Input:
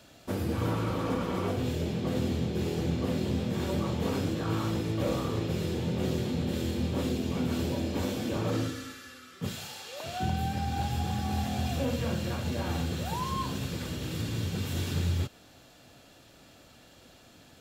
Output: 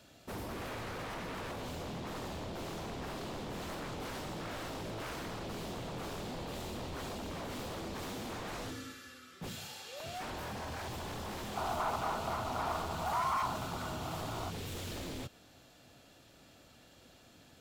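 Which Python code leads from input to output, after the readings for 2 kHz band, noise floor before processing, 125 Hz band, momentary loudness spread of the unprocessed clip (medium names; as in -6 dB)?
-2.5 dB, -56 dBFS, -14.0 dB, 5 LU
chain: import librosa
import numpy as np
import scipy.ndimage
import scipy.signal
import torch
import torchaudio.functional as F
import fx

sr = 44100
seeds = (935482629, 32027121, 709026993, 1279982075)

y = 10.0 ** (-32.0 / 20.0) * (np.abs((x / 10.0 ** (-32.0 / 20.0) + 3.0) % 4.0 - 2.0) - 1.0)
y = fx.spec_box(y, sr, start_s=11.57, length_s=2.94, low_hz=620.0, high_hz=1500.0, gain_db=12)
y = y * librosa.db_to_amplitude(-4.5)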